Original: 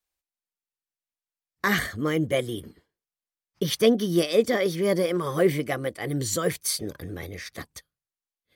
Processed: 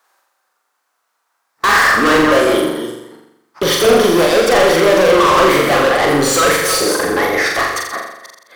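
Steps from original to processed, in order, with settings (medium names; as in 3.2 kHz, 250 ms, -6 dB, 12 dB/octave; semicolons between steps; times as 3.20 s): chunks repeated in reverse 243 ms, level -13.5 dB; high-pass 970 Hz 6 dB/octave; resonant high shelf 1.8 kHz -12.5 dB, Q 1.5; overdrive pedal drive 35 dB, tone 5 kHz, clips at -14.5 dBFS; flutter echo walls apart 7.3 m, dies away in 0.84 s; trim +7.5 dB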